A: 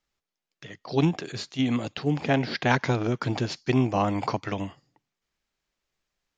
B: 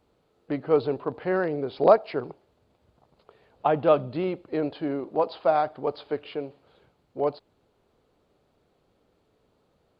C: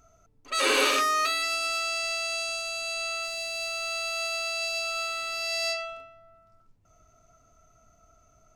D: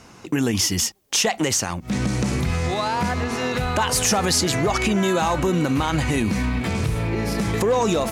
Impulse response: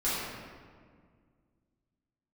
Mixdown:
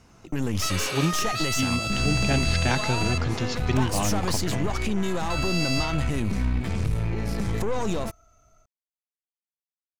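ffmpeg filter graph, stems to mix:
-filter_complex "[0:a]highshelf=f=3900:g=10.5,volume=0.376[s0];[2:a]lowshelf=f=330:g=-8,alimiter=limit=0.0708:level=0:latency=1,adelay=100,volume=0.794,asplit=3[s1][s2][s3];[s1]atrim=end=3.18,asetpts=PTS-STARTPTS,afade=t=out:st=3.176:d=0.004:c=hsin[s4];[s2]atrim=start=3.18:end=5.3,asetpts=PTS-STARTPTS,volume=0[s5];[s3]atrim=start=5.3,asetpts=PTS-STARTPTS,afade=t=in:d=0.004:c=hsin[s6];[s4][s5][s6]concat=n=3:v=0:a=1[s7];[3:a]aeval=exprs='(tanh(8.91*val(0)+0.6)-tanh(0.6))/8.91':c=same,volume=0.376[s8];[s0][s7][s8]amix=inputs=3:normalize=0,lowshelf=f=140:g=11,dynaudnorm=f=200:g=3:m=1.41"

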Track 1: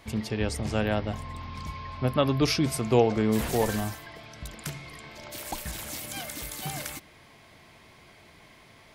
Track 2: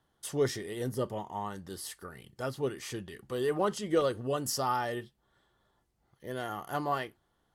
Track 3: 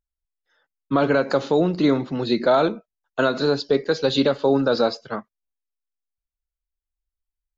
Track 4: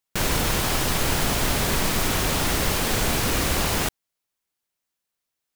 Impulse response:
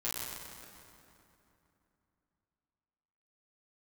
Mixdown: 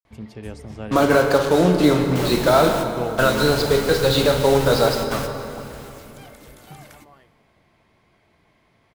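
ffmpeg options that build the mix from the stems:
-filter_complex "[0:a]highshelf=f=2500:g=-9.5,adelay=50,volume=0.501,asplit=2[s0][s1];[s1]volume=0.075[s2];[1:a]acompressor=threshold=0.0141:ratio=2,adelay=200,volume=0.188[s3];[2:a]asubboost=boost=11.5:cutoff=79,acrusher=bits=4:mix=0:aa=0.5,volume=1,asplit=3[s4][s5][s6];[s5]volume=0.631[s7];[3:a]adelay=2000,volume=0.335,asplit=2[s8][s9];[s9]volume=0.15[s10];[s6]apad=whole_len=333103[s11];[s8][s11]sidechaingate=range=0.0224:threshold=0.0126:ratio=16:detection=peak[s12];[4:a]atrim=start_sample=2205[s13];[s2][s7][s10]amix=inputs=3:normalize=0[s14];[s14][s13]afir=irnorm=-1:irlink=0[s15];[s0][s3][s4][s12][s15]amix=inputs=5:normalize=0"

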